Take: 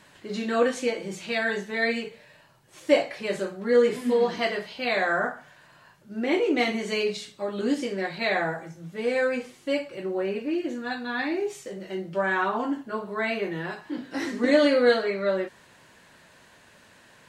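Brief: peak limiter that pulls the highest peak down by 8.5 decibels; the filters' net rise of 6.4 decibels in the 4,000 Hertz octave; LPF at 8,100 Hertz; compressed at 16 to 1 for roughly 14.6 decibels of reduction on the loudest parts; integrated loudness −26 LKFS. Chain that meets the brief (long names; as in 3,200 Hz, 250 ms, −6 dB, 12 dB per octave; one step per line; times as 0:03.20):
low-pass filter 8,100 Hz
parametric band 4,000 Hz +8 dB
downward compressor 16 to 1, threshold −28 dBFS
level +9 dB
brickwall limiter −16.5 dBFS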